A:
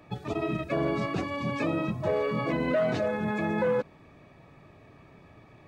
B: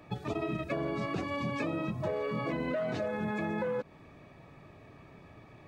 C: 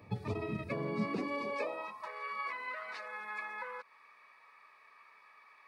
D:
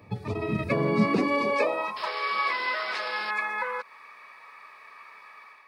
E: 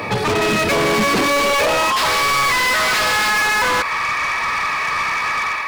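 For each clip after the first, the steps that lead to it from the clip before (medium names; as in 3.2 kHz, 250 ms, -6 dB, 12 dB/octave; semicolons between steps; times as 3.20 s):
compression, threshold -30 dBFS, peak gain reduction 8 dB
rippled EQ curve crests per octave 0.9, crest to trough 8 dB; high-pass sweep 90 Hz -> 1.3 kHz, 0.63–2.09 s; trim -4.5 dB
level rider gain up to 8 dB; painted sound noise, 1.96–3.31 s, 320–5400 Hz -43 dBFS; trim +4 dB
overdrive pedal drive 40 dB, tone 7.6 kHz, clips at -10.5 dBFS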